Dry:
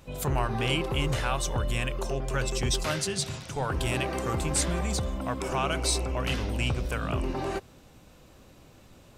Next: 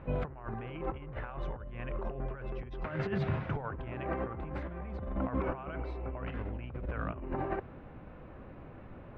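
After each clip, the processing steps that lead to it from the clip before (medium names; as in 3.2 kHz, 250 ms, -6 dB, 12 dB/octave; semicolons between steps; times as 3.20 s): low-pass 2 kHz 24 dB/octave; compressor with a negative ratio -34 dBFS, ratio -0.5; trim -1 dB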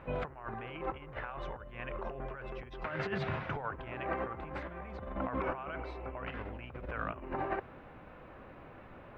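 bass shelf 430 Hz -11 dB; trim +4 dB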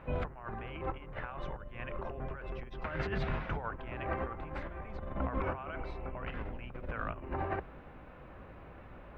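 octave divider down 2 oct, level +3 dB; trim -1 dB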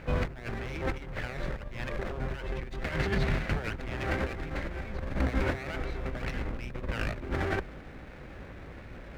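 comb filter that takes the minimum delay 0.48 ms; trim +7 dB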